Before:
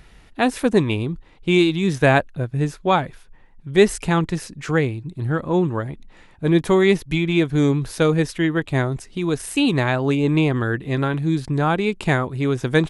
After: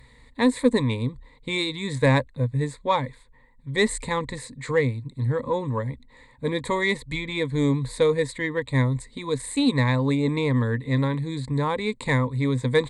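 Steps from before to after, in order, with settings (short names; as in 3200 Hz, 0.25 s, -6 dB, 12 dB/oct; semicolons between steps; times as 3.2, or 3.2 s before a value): ripple EQ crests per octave 1, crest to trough 17 dB; in parallel at -9.5 dB: soft clip -11.5 dBFS, distortion -12 dB; on the sum: gain -8.5 dB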